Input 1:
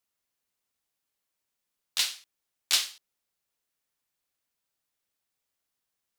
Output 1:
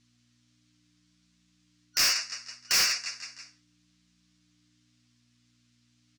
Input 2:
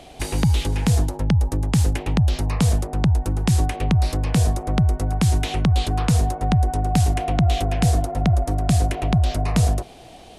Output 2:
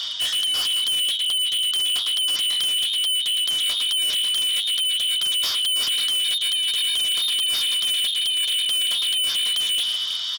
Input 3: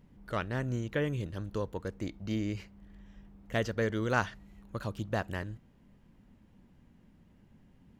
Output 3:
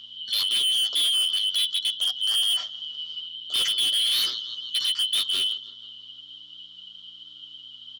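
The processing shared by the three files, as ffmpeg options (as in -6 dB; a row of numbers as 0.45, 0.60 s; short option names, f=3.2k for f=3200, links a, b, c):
-af "afftfilt=real='real(if(lt(b,272),68*(eq(floor(b/68),0)*1+eq(floor(b/68),1)*3+eq(floor(b/68),2)*0+eq(floor(b/68),3)*2)+mod(b,68),b),0)':imag='imag(if(lt(b,272),68*(eq(floor(b/68),0)*1+eq(floor(b/68),1)*3+eq(floor(b/68),2)*0+eq(floor(b/68),3)*2)+mod(b,68),b),0)':win_size=2048:overlap=0.75,aecho=1:1:164|328|492|656:0.0794|0.0429|0.0232|0.0125,areverse,acompressor=threshold=-27dB:ratio=20,areverse,aeval=exprs='val(0)+0.00141*(sin(2*PI*60*n/s)+sin(2*PI*2*60*n/s)/2+sin(2*PI*3*60*n/s)/3+sin(2*PI*4*60*n/s)/4+sin(2*PI*5*60*n/s)/5)':c=same,highshelf=f=4.6k:g=-6.5,flanger=delay=7.7:depth=3.5:regen=13:speed=0.36:shape=triangular,apsyclip=28.5dB,lowpass=f=6k:w=0.5412,lowpass=f=6k:w=1.3066,aderivative,asoftclip=type=hard:threshold=-21dB,asuperstop=centerf=860:order=4:qfactor=6.1"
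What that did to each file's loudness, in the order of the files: +2.0, +1.5, +12.5 LU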